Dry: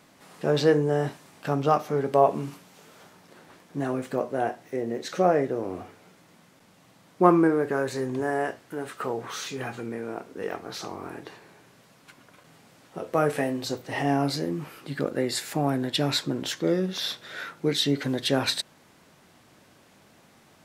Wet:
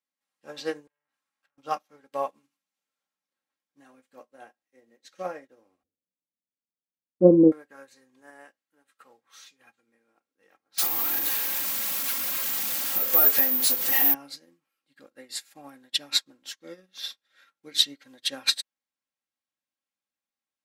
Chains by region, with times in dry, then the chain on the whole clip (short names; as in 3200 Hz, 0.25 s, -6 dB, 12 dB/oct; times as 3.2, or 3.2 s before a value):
0.87–1.58 bell 1300 Hz +8.5 dB 1.4 oct + compressor 12:1, threshold -35 dBFS + core saturation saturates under 2200 Hz
5.83–7.52 elliptic low-pass 550 Hz, stop band 60 dB + low shelf 190 Hz +11 dB + three-band expander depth 70%
10.78–14.14 zero-crossing step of -26 dBFS + compressor 2:1, threshold -28 dBFS + careless resampling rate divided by 3×, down none, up zero stuff
whole clip: tilt shelf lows -7 dB; comb 3.7 ms, depth 60%; upward expander 2.5:1, over -41 dBFS; gain +2 dB